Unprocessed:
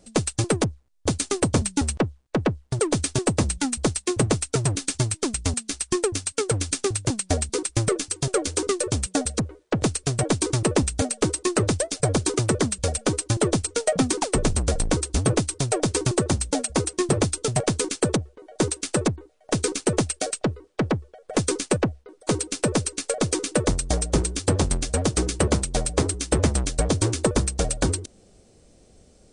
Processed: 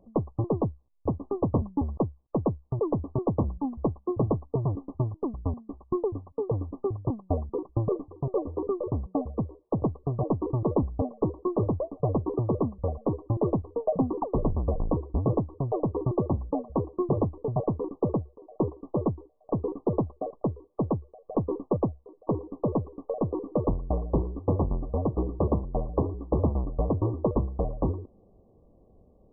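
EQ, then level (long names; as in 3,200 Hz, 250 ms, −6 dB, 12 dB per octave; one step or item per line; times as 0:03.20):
linear-phase brick-wall low-pass 1,200 Hz
−3.5 dB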